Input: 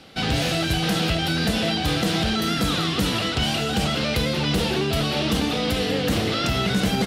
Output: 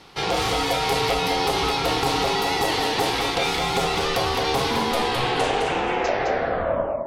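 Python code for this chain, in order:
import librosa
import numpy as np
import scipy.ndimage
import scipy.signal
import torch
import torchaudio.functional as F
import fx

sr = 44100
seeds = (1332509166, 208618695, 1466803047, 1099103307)

y = fx.tape_stop_end(x, sr, length_s=2.26)
y = y * np.sin(2.0 * np.pi * 610.0 * np.arange(len(y)) / sr)
y = y + 10.0 ** (-5.5 / 20.0) * np.pad(y, (int(211 * sr / 1000.0), 0))[:len(y)]
y = F.gain(torch.from_numpy(y), 2.0).numpy()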